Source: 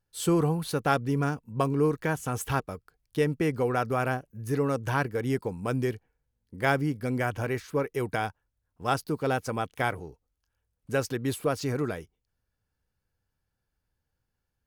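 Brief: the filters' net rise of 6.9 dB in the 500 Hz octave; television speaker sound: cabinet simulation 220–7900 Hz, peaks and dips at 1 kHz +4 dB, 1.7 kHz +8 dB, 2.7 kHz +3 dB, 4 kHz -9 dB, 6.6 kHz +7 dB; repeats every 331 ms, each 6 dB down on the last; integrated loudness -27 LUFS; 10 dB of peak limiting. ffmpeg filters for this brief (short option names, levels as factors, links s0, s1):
-af "equalizer=f=500:t=o:g=8,alimiter=limit=0.15:level=0:latency=1,highpass=f=220:w=0.5412,highpass=f=220:w=1.3066,equalizer=f=1000:t=q:w=4:g=4,equalizer=f=1700:t=q:w=4:g=8,equalizer=f=2700:t=q:w=4:g=3,equalizer=f=4000:t=q:w=4:g=-9,equalizer=f=6600:t=q:w=4:g=7,lowpass=f=7900:w=0.5412,lowpass=f=7900:w=1.3066,aecho=1:1:331|662|993|1324|1655|1986:0.501|0.251|0.125|0.0626|0.0313|0.0157,volume=1.06"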